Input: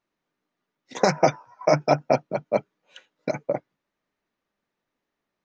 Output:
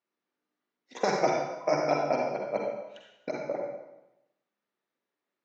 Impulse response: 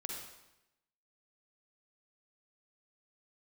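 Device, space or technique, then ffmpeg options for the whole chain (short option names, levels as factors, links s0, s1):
supermarket ceiling speaker: -filter_complex "[0:a]highpass=220,lowpass=6700[s0];[1:a]atrim=start_sample=2205[s1];[s0][s1]afir=irnorm=-1:irlink=0,volume=0.631"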